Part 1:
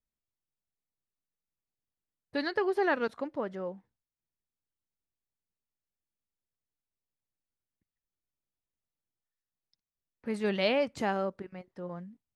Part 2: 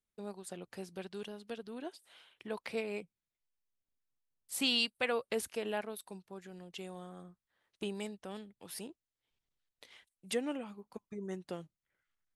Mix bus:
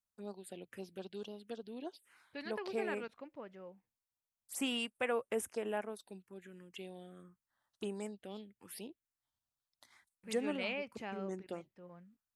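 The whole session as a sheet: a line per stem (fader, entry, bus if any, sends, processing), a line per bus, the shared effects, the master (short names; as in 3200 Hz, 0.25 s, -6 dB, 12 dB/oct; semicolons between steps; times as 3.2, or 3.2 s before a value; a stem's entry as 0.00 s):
-14.5 dB, 0.00 s, no send, bell 2500 Hz +10.5 dB 0.52 oct
-0.5 dB, 0.00 s, no send, HPF 74 Hz; bell 160 Hz -12.5 dB 0.21 oct; envelope phaser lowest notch 390 Hz, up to 4300 Hz, full sweep at -35.5 dBFS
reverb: off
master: dry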